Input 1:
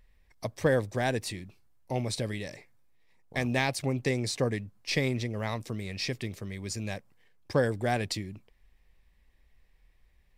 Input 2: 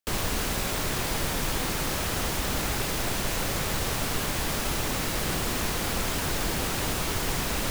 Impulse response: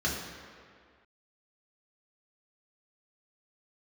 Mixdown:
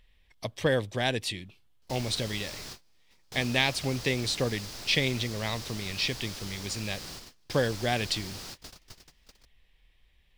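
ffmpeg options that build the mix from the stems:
-filter_complex "[0:a]equalizer=f=3200:t=o:w=0.74:g=13,volume=0.891,asplit=2[s0][s1];[1:a]equalizer=f=4900:w=1.4:g=12.5,adelay=1750,volume=0.15[s2];[s1]apad=whole_len=416802[s3];[s2][s3]sidechaingate=range=0.0224:threshold=0.00126:ratio=16:detection=peak[s4];[s0][s4]amix=inputs=2:normalize=0"

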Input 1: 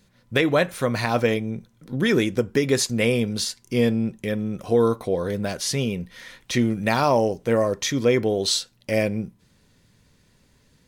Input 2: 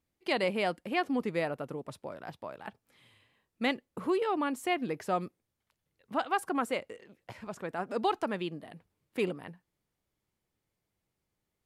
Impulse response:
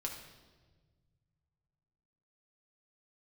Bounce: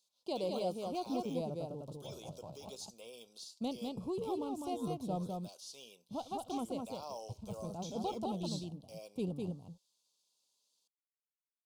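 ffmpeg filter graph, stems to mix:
-filter_complex "[0:a]highpass=1500,deesser=0.95,volume=0.398[s0];[1:a]bandreject=f=1200:w=15,asubboost=boost=7.5:cutoff=130,aeval=exprs='sgn(val(0))*max(abs(val(0))-0.00168,0)':c=same,volume=0.562,asplit=2[s1][s2];[s2]volume=0.668,aecho=0:1:204:1[s3];[s0][s1][s3]amix=inputs=3:normalize=0,asuperstop=centerf=1800:order=4:qfactor=0.58,highshelf=f=11000:g=-7.5"

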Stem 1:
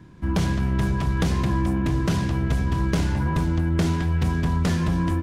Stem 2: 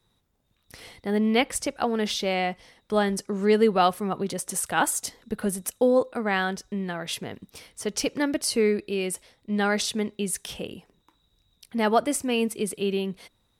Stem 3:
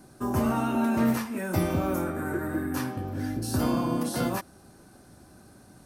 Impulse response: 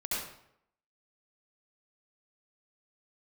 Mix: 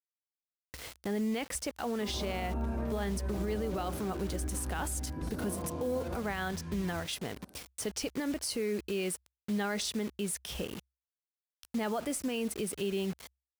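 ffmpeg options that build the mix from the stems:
-filter_complex "[0:a]adelay=1850,volume=0.112[s0];[1:a]agate=range=0.0224:threshold=0.00447:ratio=3:detection=peak,alimiter=limit=0.119:level=0:latency=1:release=28,acrusher=bits=6:mix=0:aa=0.000001,volume=0.944[s1];[2:a]equalizer=f=500:t=o:w=2.6:g=12.5,adelay=1800,volume=0.112,asplit=2[s2][s3];[s3]volume=0.376[s4];[3:a]atrim=start_sample=2205[s5];[s4][s5]afir=irnorm=-1:irlink=0[s6];[s0][s1][s2][s6]amix=inputs=4:normalize=0,equalizer=f=65:t=o:w=0.32:g=15,alimiter=level_in=1.19:limit=0.0631:level=0:latency=1:release=185,volume=0.841"

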